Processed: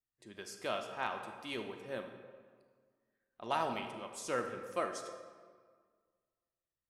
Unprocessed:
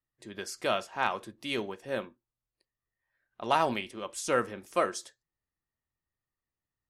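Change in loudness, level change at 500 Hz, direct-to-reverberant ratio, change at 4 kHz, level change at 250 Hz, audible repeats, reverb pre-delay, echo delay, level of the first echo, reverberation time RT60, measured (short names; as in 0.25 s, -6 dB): -7.5 dB, -7.5 dB, 6.0 dB, -8.0 dB, -7.5 dB, none, 31 ms, none, none, 1.7 s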